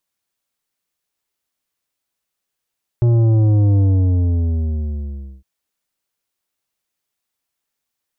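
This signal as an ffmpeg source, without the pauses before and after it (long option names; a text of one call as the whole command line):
ffmpeg -f lavfi -i "aevalsrc='0.266*clip((2.41-t)/1.65,0,1)*tanh(2.99*sin(2*PI*120*2.41/log(65/120)*(exp(log(65/120)*t/2.41)-1)))/tanh(2.99)':duration=2.41:sample_rate=44100" out.wav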